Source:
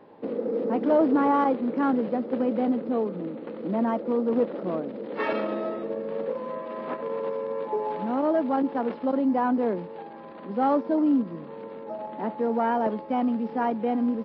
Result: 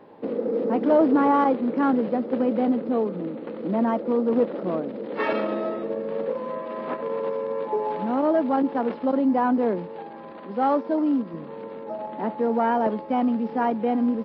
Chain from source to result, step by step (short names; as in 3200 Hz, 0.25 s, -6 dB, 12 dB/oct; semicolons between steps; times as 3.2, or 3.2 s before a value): 10.39–11.34 low shelf 260 Hz -7 dB; gain +2.5 dB